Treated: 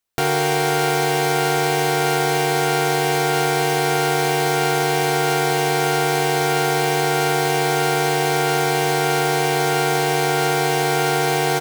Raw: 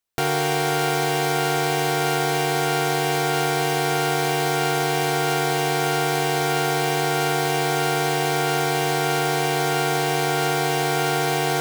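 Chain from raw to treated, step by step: doubling 32 ms -14 dB; trim +2.5 dB

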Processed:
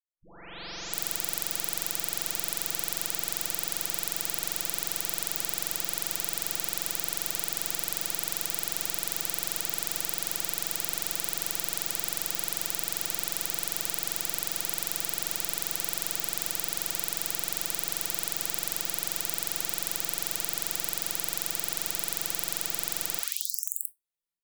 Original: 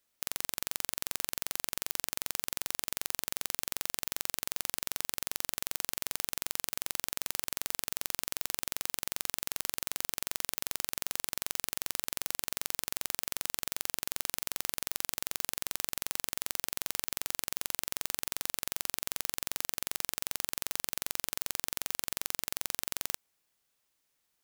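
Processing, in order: delay that grows with frequency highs late, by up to 711 ms; de-hum 65.22 Hz, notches 25; level rider gain up to 7 dB; simulated room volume 390 m³, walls furnished, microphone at 0.69 m; spectral contrast expander 1.5:1

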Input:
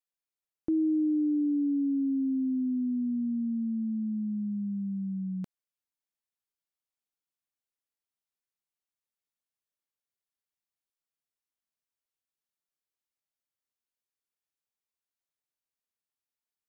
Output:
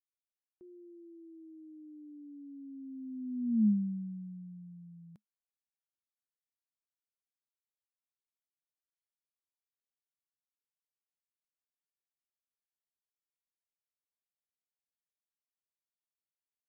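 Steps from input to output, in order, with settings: Doppler pass-by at 3.62 s, 37 m/s, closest 4.3 m; peaking EQ 210 Hz +6.5 dB 0.2 oct; trim +1.5 dB

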